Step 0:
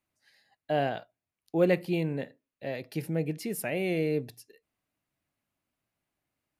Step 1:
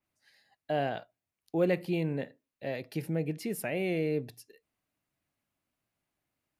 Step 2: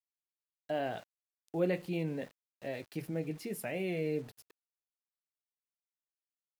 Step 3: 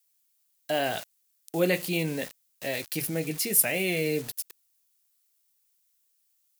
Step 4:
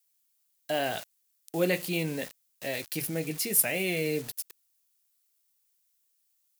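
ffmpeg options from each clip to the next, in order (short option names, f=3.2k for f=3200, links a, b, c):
-filter_complex "[0:a]asplit=2[a][b];[b]alimiter=limit=-23dB:level=0:latency=1:release=109,volume=-2dB[c];[a][c]amix=inputs=2:normalize=0,adynamicequalizer=threshold=0.00447:dfrequency=4000:dqfactor=0.7:tfrequency=4000:tqfactor=0.7:attack=5:release=100:ratio=0.375:range=2:mode=cutabove:tftype=highshelf,volume=-5.5dB"
-af "flanger=delay=9.6:depth=1.3:regen=-58:speed=1.6:shape=sinusoidal,aeval=exprs='val(0)*gte(abs(val(0)),0.00237)':c=same"
-af "crystalizer=i=7:c=0,volume=5dB"
-af "acrusher=bits=6:mode=log:mix=0:aa=0.000001,volume=-2dB"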